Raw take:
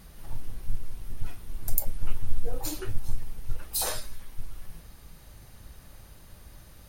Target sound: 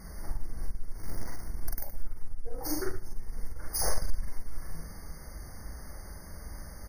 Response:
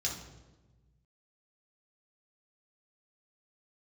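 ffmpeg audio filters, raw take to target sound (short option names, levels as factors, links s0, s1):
-filter_complex "[0:a]acompressor=threshold=0.0501:ratio=12,asplit=3[s0][s1][s2];[s0]afade=t=out:st=3.79:d=0.02[s3];[s1]lowshelf=f=170:g=12,afade=t=in:st=3.79:d=0.02,afade=t=out:st=4.26:d=0.02[s4];[s2]afade=t=in:st=4.26:d=0.02[s5];[s3][s4][s5]amix=inputs=3:normalize=0,asoftclip=type=tanh:threshold=0.0501,asplit=2[s6][s7];[s7]aecho=0:1:98|196|294|392:0.0794|0.0461|0.0267|0.0155[s8];[s6][s8]amix=inputs=2:normalize=0,asettb=1/sr,asplit=3[s9][s10][s11];[s9]atrim=end=0.984[s12];[s10]atrim=start=0.98:end=1.44,asetpts=PTS-STARTPTS,afade=t=in:d=0.004:c=qsin,afade=t=out:st=0.456:d=0.004:c=qsin,acrusher=bits=4:mode=log:mix=0:aa=0.000001[s13];[s11]atrim=start=1.436[s14];[s12][s13]acrossfade=d=0.004:c1=hsin:c2=qsin[s15];[s15][s14]acrossfade=d=0.004:c1=qsin:c2=hsin,equalizer=f=120:w=5.7:g=-12.5,asplit=2[s16][s17];[s17]aecho=0:1:43.73|116.6:0.891|0.282[s18];[s16][s18]amix=inputs=2:normalize=0,afftfilt=real='re*eq(mod(floor(b*sr/1024/2200),2),0)':imag='im*eq(mod(floor(b*sr/1024/2200),2),0)':win_size=1024:overlap=0.75,volume=1.58"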